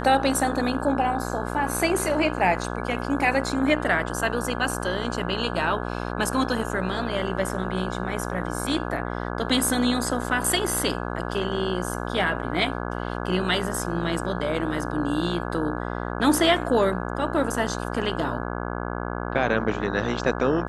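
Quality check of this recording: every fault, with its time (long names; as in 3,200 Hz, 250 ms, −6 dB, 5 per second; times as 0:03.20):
mains buzz 60 Hz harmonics 28 −30 dBFS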